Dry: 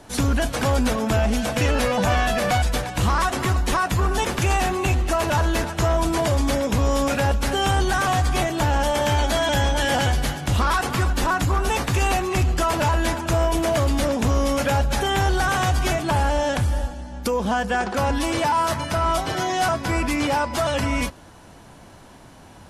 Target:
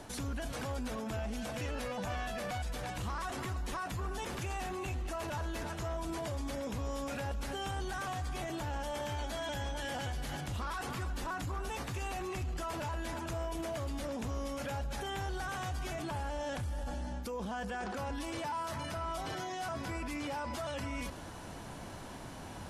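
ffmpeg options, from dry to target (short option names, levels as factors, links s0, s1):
-af "areverse,acompressor=threshold=0.0355:ratio=6,areverse,alimiter=level_in=2.37:limit=0.0631:level=0:latency=1:release=24,volume=0.422"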